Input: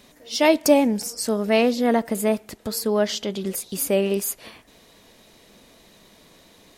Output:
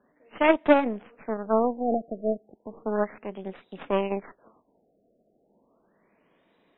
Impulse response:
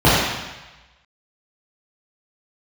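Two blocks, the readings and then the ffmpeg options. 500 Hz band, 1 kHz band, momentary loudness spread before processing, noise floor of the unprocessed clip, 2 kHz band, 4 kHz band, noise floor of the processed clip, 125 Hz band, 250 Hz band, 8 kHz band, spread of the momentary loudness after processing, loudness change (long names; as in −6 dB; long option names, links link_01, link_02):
−4.5 dB, −0.5 dB, 10 LU, −54 dBFS, −3.5 dB, −15.0 dB, −69 dBFS, can't be measured, −6.0 dB, below −40 dB, 16 LU, −4.5 dB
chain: -filter_complex "[0:a]aeval=exprs='0.631*(cos(1*acos(clip(val(0)/0.631,-1,1)))-cos(1*PI/2))+0.1*(cos(3*acos(clip(val(0)/0.631,-1,1)))-cos(3*PI/2))+0.0708*(cos(6*acos(clip(val(0)/0.631,-1,1)))-cos(6*PI/2))+0.02*(cos(7*acos(clip(val(0)/0.631,-1,1)))-cos(7*PI/2))':channel_layout=same,acrossover=split=160 3000:gain=0.224 1 0.0708[link_01][link_02][link_03];[link_01][link_02][link_03]amix=inputs=3:normalize=0,afftfilt=real='re*lt(b*sr/1024,730*pow(4000/730,0.5+0.5*sin(2*PI*0.34*pts/sr)))':imag='im*lt(b*sr/1024,730*pow(4000/730,0.5+0.5*sin(2*PI*0.34*pts/sr)))':win_size=1024:overlap=0.75"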